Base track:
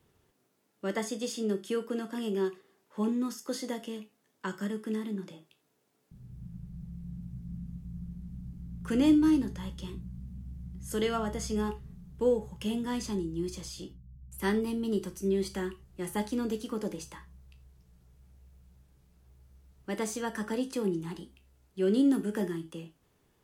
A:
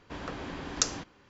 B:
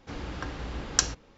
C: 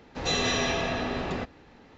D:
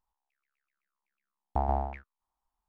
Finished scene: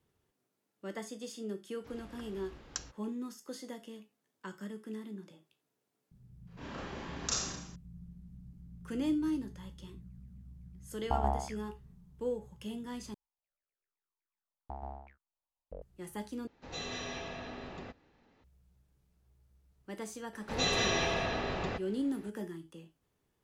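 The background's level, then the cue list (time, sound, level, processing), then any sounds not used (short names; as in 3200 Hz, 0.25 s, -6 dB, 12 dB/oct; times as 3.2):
base track -9 dB
1.77 add B -16.5 dB
6.47 add A -11 dB + Schroeder reverb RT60 0.78 s, combs from 28 ms, DRR -6.5 dB
9.55 add D -3.5 dB + bell 1100 Hz +3 dB
13.14 replace with D -15 dB + echoes that change speed 0.245 s, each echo -7 st, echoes 2
16.47 replace with C -14 dB
20.33 add C -3.5 dB + bell 260 Hz -7.5 dB 0.31 oct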